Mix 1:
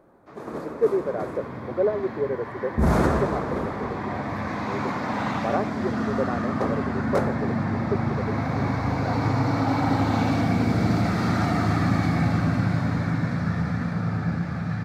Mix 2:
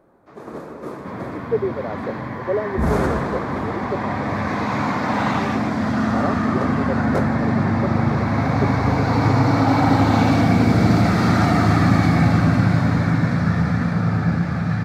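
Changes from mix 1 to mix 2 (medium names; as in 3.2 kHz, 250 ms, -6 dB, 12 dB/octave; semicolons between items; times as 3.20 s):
speech: entry +0.70 s; second sound +6.5 dB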